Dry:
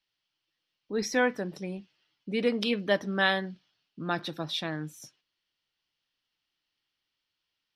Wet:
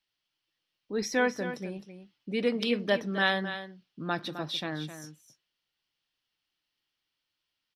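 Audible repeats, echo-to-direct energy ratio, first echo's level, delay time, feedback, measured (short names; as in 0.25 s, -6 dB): 1, -11.0 dB, -11.0 dB, 0.261 s, no steady repeat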